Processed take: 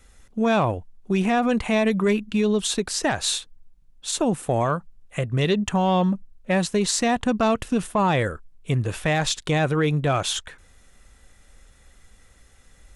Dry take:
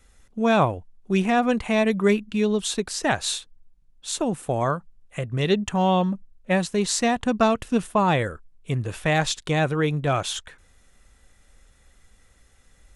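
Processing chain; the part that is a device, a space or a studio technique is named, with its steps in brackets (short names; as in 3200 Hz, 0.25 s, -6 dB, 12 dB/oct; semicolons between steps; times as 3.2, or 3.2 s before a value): soft clipper into limiter (soft clip -9.5 dBFS, distortion -25 dB; limiter -17 dBFS, peak gain reduction 6 dB); gain +3.5 dB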